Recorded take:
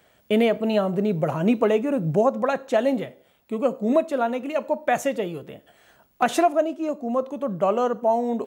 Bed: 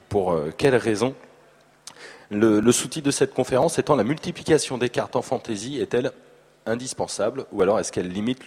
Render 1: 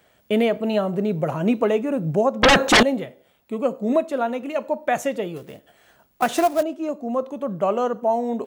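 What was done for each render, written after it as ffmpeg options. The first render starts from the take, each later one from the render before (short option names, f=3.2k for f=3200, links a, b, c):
-filter_complex "[0:a]asettb=1/sr,asplit=3[a][b][c];[a]atrim=end=2.434[d];[b]atrim=start=2.43:end=2.83,asetpts=PTS-STARTPTS,afade=t=in:d=0.004:c=qsin,afade=t=out:st=0.396:d=0.004:c=qsin,aeval=exprs='0.355*sin(PI/2*5.62*val(0)/0.355)':c=same[e];[c]atrim=start=2.826[f];[d][e]acrossfade=d=0.004:c1=hsin:c2=qsin[g];[g][f]acrossfade=d=0.004:c1=qsin:c2=hsin,asettb=1/sr,asplit=3[h][i][j];[h]atrim=end=5.364[k];[i]atrim=start=5.36:end=6.63,asetpts=PTS-STARTPTS,afade=t=in:d=0.004:c=qsin,afade=t=out:st=1.266:d=0.004:c=qsin,acrusher=bits=4:mode=log:mix=0:aa=0.000001[l];[j]atrim=start=6.626[m];[k][l]acrossfade=d=0.004:c1=hsin:c2=qsin[n];[n][m]acrossfade=d=0.004:c1=qsin:c2=hsin"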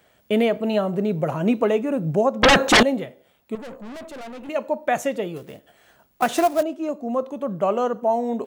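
-filter_complex "[0:a]asettb=1/sr,asplit=3[a][b][c];[a]atrim=end=3.554[d];[b]atrim=start=3.55:end=4.49,asetpts=PTS-STARTPTS,afade=t=in:d=0.004:c=qsin,afade=t=out:st=0.936:d=0.004:c=qsin,aeval=exprs='(tanh(56.2*val(0)+0.35)-tanh(0.35))/56.2':c=same[e];[c]atrim=start=4.486[f];[d][e]acrossfade=d=0.004:c1=hsin:c2=qsin[g];[g][f]acrossfade=d=0.004:c1=qsin:c2=hsin"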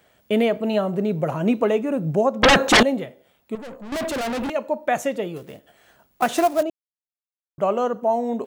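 -filter_complex "[0:a]asettb=1/sr,asplit=3[a][b][c];[a]atrim=end=3.924[d];[b]atrim=start=3.92:end=4.5,asetpts=PTS-STARTPTS,afade=t=in:d=0.004:c=qsin,afade=t=out:st=0.576:d=0.004:c=qsin,aeval=exprs='0.0668*sin(PI/2*3.98*val(0)/0.0668)':c=same[e];[c]atrim=start=4.496[f];[d][e]acrossfade=d=0.004:c1=hsin:c2=qsin[g];[g][f]acrossfade=d=0.004:c1=qsin:c2=hsin,asplit=3[h][i][j];[h]atrim=end=6.7,asetpts=PTS-STARTPTS,afade=t=out:st=6.696:d=0.004:c=hsin[k];[i]atrim=start=6.7:end=7.58,asetpts=PTS-STARTPTS,volume=0[l];[j]atrim=start=7.58,asetpts=PTS-STARTPTS,afade=t=in:d=0.004:c=hsin[m];[k][l][m]concat=n=3:v=0:a=1"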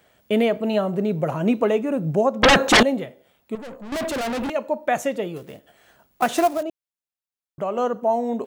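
-filter_complex "[0:a]asettb=1/sr,asplit=3[a][b][c];[a]atrim=end=6.574[d];[b]atrim=start=6.57:end=7.78,asetpts=PTS-STARTPTS,afade=t=in:d=0.004:c=qsin,afade=t=out:st=1.206:d=0.004:c=qsin,acompressor=threshold=-25dB:ratio=2:attack=3.2:release=140:knee=1:detection=peak[e];[c]atrim=start=7.776[f];[d][e]acrossfade=d=0.004:c1=hsin:c2=qsin[g];[g][f]acrossfade=d=0.004:c1=qsin:c2=hsin"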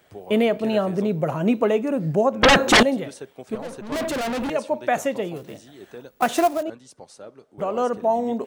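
-filter_complex "[1:a]volume=-17.5dB[a];[0:a][a]amix=inputs=2:normalize=0"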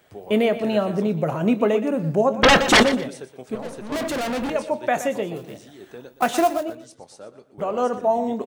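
-filter_complex "[0:a]asplit=2[a][b];[b]adelay=24,volume=-14dB[c];[a][c]amix=inputs=2:normalize=0,aecho=1:1:120|240:0.224|0.047"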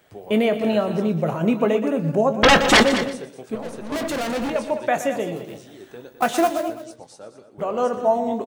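-filter_complex "[0:a]asplit=2[a][b];[b]adelay=18,volume=-13dB[c];[a][c]amix=inputs=2:normalize=0,aecho=1:1:209:0.251"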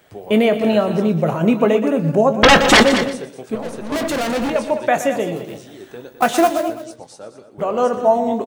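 -af "volume=4.5dB,alimiter=limit=-2dB:level=0:latency=1"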